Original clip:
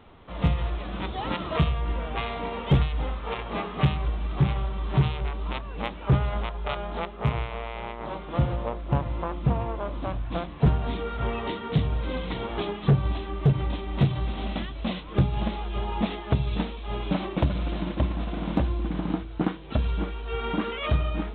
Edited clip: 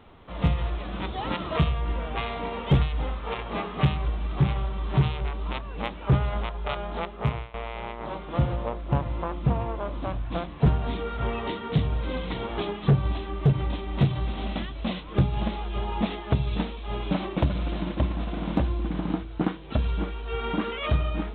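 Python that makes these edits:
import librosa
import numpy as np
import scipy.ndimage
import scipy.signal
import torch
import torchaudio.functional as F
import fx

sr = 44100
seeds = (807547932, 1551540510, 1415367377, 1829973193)

y = fx.edit(x, sr, fx.fade_out_to(start_s=7.24, length_s=0.3, floor_db=-17.0), tone=tone)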